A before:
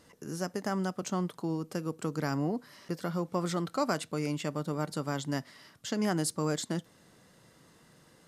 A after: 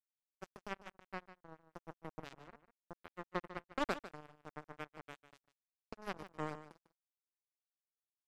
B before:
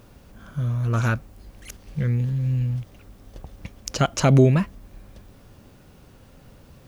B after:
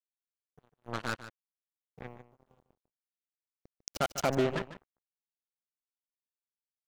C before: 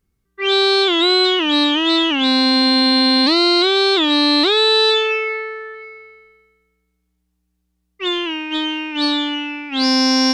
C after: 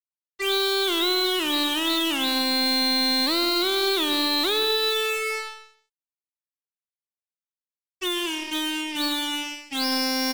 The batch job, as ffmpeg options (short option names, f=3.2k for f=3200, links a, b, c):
-filter_complex "[0:a]asplit=2[a][b];[b]adelay=216,lowpass=f=2.1k:p=1,volume=-15.5dB,asplit=2[c][d];[d]adelay=216,lowpass=f=2.1k:p=1,volume=0.48,asplit=2[e][f];[f]adelay=216,lowpass=f=2.1k:p=1,volume=0.48,asplit=2[g][h];[h]adelay=216,lowpass=f=2.1k:p=1,volume=0.48[i];[c][e][g][i]amix=inputs=4:normalize=0[j];[a][j]amix=inputs=2:normalize=0,afftdn=nr=14:nf=-28,acrossover=split=320|3900[k][l][m];[k]acompressor=threshold=-34dB:ratio=4[n];[l]acompressor=threshold=-18dB:ratio=4[o];[m]acompressor=threshold=-24dB:ratio=4[p];[n][o][p]amix=inputs=3:normalize=0,acrusher=bits=3:mix=0:aa=0.5,asplit=2[q][r];[r]aecho=0:1:149:0.211[s];[q][s]amix=inputs=2:normalize=0,aeval=exprs='0.447*(cos(1*acos(clip(val(0)/0.447,-1,1)))-cos(1*PI/2))+0.0708*(cos(2*acos(clip(val(0)/0.447,-1,1)))-cos(2*PI/2))+0.00708*(cos(4*acos(clip(val(0)/0.447,-1,1)))-cos(4*PI/2))':c=same,volume=-5.5dB"